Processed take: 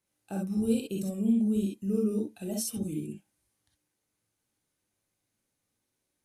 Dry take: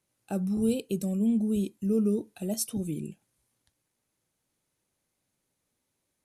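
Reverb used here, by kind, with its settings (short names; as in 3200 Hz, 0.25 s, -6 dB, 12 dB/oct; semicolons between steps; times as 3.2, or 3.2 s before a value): non-linear reverb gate 80 ms rising, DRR -0.5 dB; gain -5 dB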